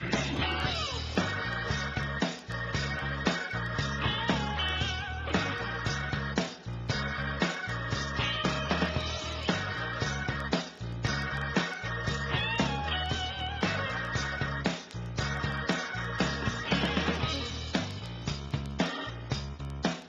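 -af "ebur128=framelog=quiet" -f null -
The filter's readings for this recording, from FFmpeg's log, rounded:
Integrated loudness:
  I:         -31.7 LUFS
  Threshold: -41.7 LUFS
Loudness range:
  LRA:         1.2 LU
  Threshold: -51.6 LUFS
  LRA low:   -32.2 LUFS
  LRA high:  -31.0 LUFS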